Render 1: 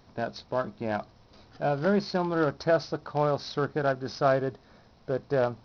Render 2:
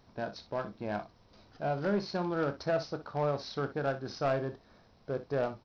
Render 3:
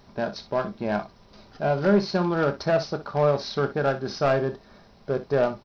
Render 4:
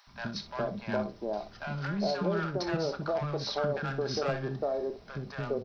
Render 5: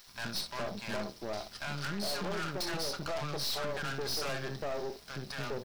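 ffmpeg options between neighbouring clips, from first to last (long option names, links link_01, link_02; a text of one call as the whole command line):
ffmpeg -i in.wav -filter_complex "[0:a]asoftclip=type=tanh:threshold=-16.5dB,asplit=2[link_01][link_02];[link_02]aecho=0:1:29|61:0.251|0.211[link_03];[link_01][link_03]amix=inputs=2:normalize=0,volume=-5dB" out.wav
ffmpeg -i in.wav -af "aecho=1:1:5:0.34,volume=8.5dB" out.wav
ffmpeg -i in.wav -filter_complex "[0:a]acompressor=threshold=-25dB:ratio=6,acrossover=split=280|890[link_01][link_02][link_03];[link_01]adelay=70[link_04];[link_02]adelay=410[link_05];[link_04][link_05][link_03]amix=inputs=3:normalize=0" out.wav
ffmpeg -i in.wav -af "crystalizer=i=7.5:c=0,aeval=exprs='(tanh(44.7*val(0)+0.8)-tanh(0.8))/44.7':channel_layout=same,aeval=exprs='val(0)*gte(abs(val(0)),0.002)':channel_layout=same" out.wav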